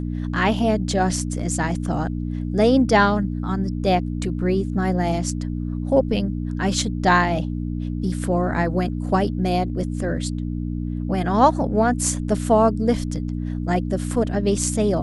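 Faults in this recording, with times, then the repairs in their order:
mains hum 60 Hz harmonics 5 −26 dBFS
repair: hum removal 60 Hz, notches 5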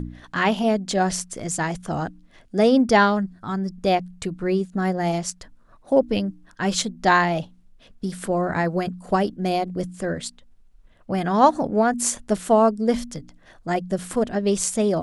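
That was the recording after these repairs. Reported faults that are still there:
none of them is left

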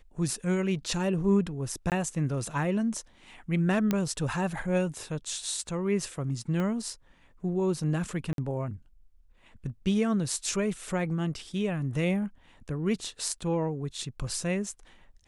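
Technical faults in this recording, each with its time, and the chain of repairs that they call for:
0:01.90–0:01.92: drop-out 18 ms
0:03.91: click −13 dBFS
0:06.60: click −21 dBFS
0:08.33–0:08.38: drop-out 52 ms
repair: click removal
repair the gap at 0:01.90, 18 ms
repair the gap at 0:08.33, 52 ms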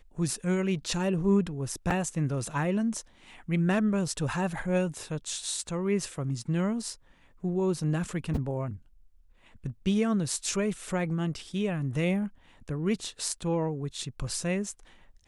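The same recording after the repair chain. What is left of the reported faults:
0:06.60: click

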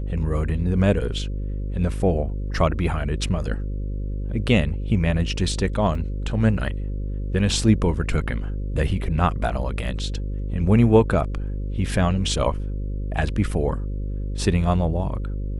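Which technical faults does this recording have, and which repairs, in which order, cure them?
mains buzz 50 Hz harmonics 11 −27 dBFS
0:05.95: drop-out 2.5 ms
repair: hum removal 50 Hz, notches 11
repair the gap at 0:05.95, 2.5 ms

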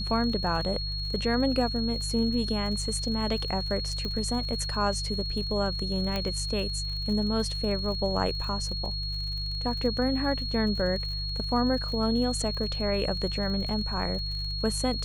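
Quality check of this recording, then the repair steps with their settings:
surface crackle 57 per second −36 dBFS
mains hum 50 Hz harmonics 3 −34 dBFS
whistle 4,300 Hz −33 dBFS
0:04.05: click −21 dBFS
0:06.16: click −16 dBFS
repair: click removal
hum removal 50 Hz, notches 3
notch filter 4,300 Hz, Q 30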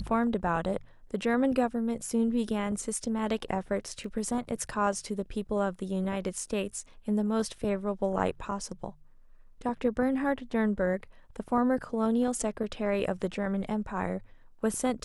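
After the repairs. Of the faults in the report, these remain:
0:04.05: click
0:06.16: click

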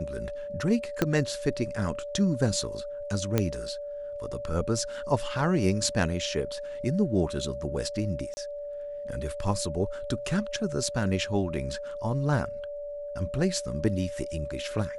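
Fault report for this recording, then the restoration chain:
whistle 580 Hz −34 dBFS
0:01.02: click −10 dBFS
0:03.38: click −10 dBFS
0:08.34–0:08.37: drop-out 30 ms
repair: click removal
notch filter 580 Hz, Q 30
repair the gap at 0:08.34, 30 ms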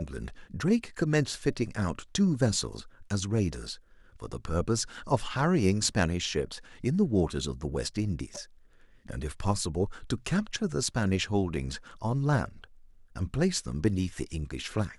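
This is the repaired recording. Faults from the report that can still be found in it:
0:01.02: click

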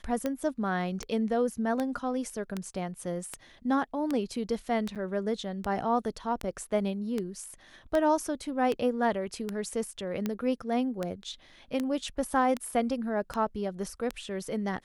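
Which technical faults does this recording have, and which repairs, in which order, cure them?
scratch tick 78 rpm −17 dBFS
0:04.95–0:04.96: drop-out 7.7 ms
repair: click removal
repair the gap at 0:04.95, 7.7 ms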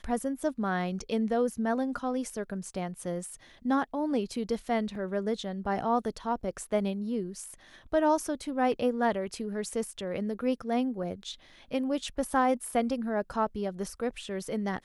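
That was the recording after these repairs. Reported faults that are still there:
none of them is left

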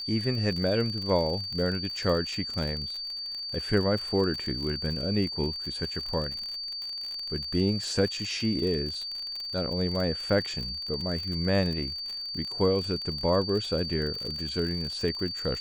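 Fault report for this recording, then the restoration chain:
surface crackle 52 per second −32 dBFS
whistle 4,600 Hz −33 dBFS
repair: click removal
notch filter 4,600 Hz, Q 30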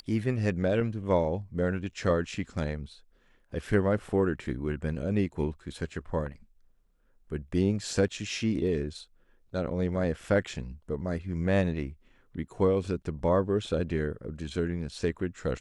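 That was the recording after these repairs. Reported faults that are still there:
none of them is left

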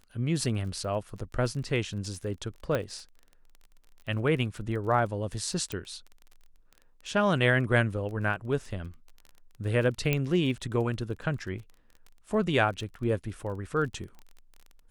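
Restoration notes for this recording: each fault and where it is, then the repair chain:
surface crackle 23 per second −38 dBFS
0:02.75: click −15 dBFS
0:05.72: click −18 dBFS
0:10.13: click −12 dBFS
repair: click removal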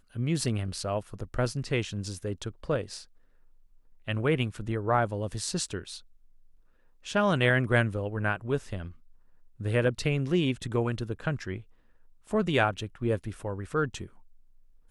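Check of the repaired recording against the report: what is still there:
0:02.75: click

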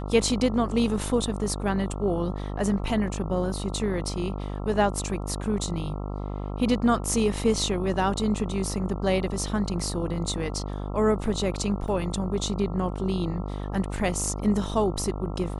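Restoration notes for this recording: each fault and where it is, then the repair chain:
mains buzz 50 Hz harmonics 27 −32 dBFS
0:11.88: drop-out 3.3 ms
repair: hum removal 50 Hz, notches 27
repair the gap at 0:11.88, 3.3 ms

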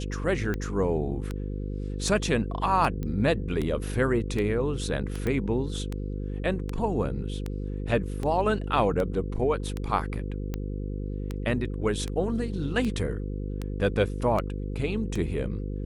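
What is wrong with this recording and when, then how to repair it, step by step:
mains buzz 50 Hz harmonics 10 −32 dBFS
scratch tick 78 rpm −18 dBFS
0:03.03: click −21 dBFS
0:05.27: click −17 dBFS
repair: click removal
hum removal 50 Hz, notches 10

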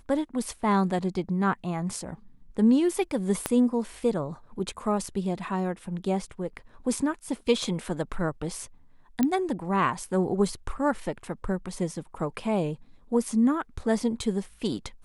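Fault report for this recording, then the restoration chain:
0:03.46: click −10 dBFS
0:09.23: click −11 dBFS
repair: click removal

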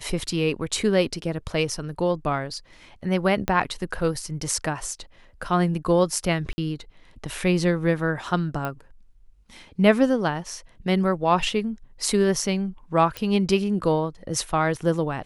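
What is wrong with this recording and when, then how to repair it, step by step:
0:03.48: click −9 dBFS
0:06.53–0:06.58: drop-out 50 ms
0:08.65: click −16 dBFS
0:13.17: click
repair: click removal
repair the gap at 0:06.53, 50 ms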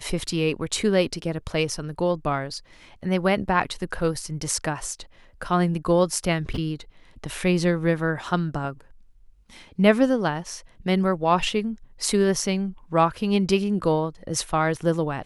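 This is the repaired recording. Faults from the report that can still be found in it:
0:03.48: click
0:13.17: click

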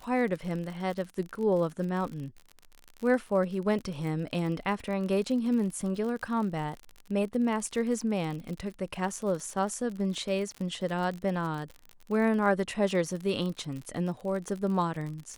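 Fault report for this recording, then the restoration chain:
surface crackle 49 per second −35 dBFS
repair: click removal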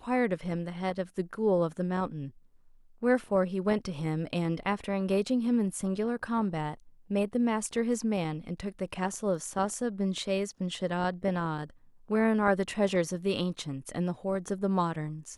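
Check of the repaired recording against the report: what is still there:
none of them is left

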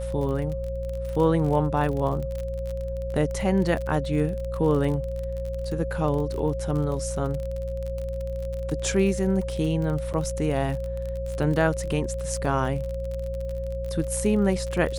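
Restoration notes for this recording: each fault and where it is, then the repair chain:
surface crackle 34 per second −30 dBFS
mains hum 60 Hz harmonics 3 −32 dBFS
whistle 540 Hz −31 dBFS
0:10.13–0:10.14: drop-out 8.2 ms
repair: click removal
hum removal 60 Hz, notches 3
notch filter 540 Hz, Q 30
repair the gap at 0:10.13, 8.2 ms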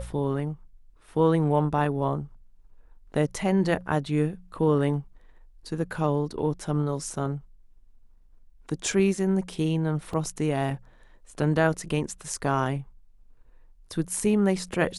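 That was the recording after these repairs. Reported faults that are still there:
none of them is left

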